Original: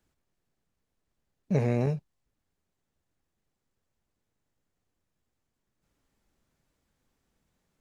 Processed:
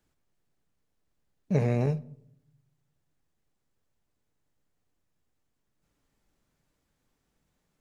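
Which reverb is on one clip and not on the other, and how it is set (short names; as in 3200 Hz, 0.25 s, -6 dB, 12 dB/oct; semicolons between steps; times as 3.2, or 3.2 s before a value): shoebox room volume 2000 m³, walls furnished, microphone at 0.4 m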